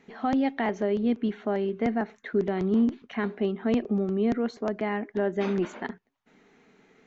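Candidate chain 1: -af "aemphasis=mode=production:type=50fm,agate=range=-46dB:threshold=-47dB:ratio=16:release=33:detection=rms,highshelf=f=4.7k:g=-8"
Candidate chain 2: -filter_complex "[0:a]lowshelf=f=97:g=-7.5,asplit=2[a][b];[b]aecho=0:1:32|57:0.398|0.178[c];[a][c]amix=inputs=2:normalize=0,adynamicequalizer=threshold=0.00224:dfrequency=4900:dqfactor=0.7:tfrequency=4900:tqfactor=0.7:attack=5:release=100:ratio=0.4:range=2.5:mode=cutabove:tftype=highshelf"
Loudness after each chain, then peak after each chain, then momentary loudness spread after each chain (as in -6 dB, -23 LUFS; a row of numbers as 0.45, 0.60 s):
-28.0, -28.0 LUFS; -15.5, -14.0 dBFS; 5, 6 LU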